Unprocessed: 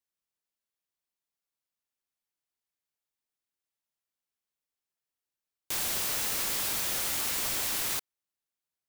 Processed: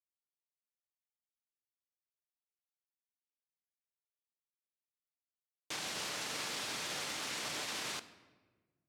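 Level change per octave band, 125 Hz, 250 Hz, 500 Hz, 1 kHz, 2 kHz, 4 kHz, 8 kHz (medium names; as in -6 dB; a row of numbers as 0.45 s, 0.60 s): -7.0 dB, -4.0 dB, -3.5 dB, -3.5 dB, -3.5 dB, -4.5 dB, -10.5 dB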